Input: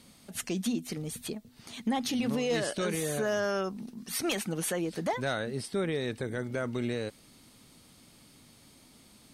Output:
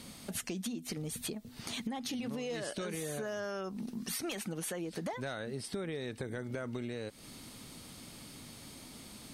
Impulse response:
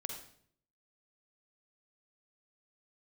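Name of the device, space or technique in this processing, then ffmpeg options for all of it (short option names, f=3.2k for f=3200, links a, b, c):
serial compression, leveller first: -af "acompressor=threshold=-39dB:ratio=1.5,acompressor=threshold=-43dB:ratio=6,volume=7dB"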